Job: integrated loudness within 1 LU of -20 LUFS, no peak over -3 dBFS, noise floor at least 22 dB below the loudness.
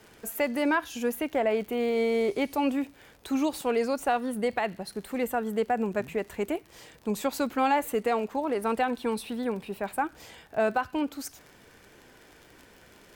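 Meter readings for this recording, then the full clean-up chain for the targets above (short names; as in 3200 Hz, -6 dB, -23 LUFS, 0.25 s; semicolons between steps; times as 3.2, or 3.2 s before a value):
ticks 48/s; loudness -29.0 LUFS; peak -15.5 dBFS; loudness target -20.0 LUFS
-> de-click; gain +9 dB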